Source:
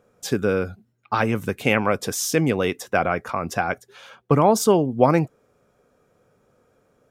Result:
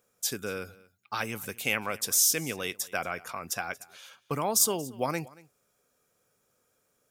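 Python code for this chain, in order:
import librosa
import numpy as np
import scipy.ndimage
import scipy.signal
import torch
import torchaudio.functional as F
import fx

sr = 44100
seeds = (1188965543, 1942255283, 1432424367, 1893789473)

y = librosa.effects.preemphasis(x, coef=0.9, zi=[0.0])
y = y + 10.0 ** (-22.0 / 20.0) * np.pad(y, (int(231 * sr / 1000.0), 0))[:len(y)]
y = y * 10.0 ** (4.0 / 20.0)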